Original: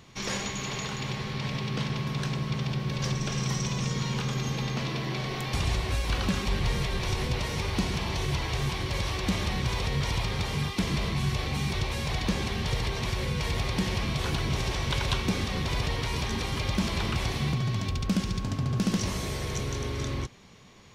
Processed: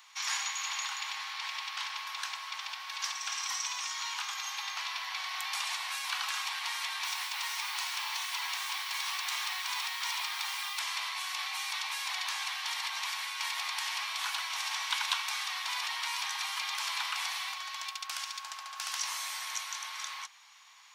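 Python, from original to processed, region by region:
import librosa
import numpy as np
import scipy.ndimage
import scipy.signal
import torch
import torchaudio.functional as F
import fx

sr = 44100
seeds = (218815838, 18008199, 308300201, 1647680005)

y = fx.chain(x, sr, fx.low_shelf(hz=360.0, db=-7.5),
    fx.quant_dither(seeds[0], bits=8, dither='none'), at=(7.04, 10.79))
y = scipy.signal.sosfilt(scipy.signal.butter(8, 850.0, 'highpass', fs=sr, output='sos'), y)
y = fx.high_shelf(y, sr, hz=8300.0, db=5.0)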